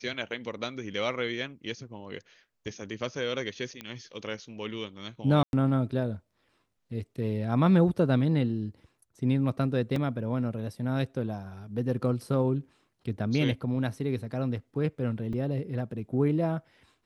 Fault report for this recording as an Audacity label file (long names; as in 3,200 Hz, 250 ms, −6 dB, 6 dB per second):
3.810000	3.810000	click −22 dBFS
5.430000	5.530000	drop-out 101 ms
9.960000	9.960000	drop-out 2.6 ms
15.330000	15.330000	drop-out 3.4 ms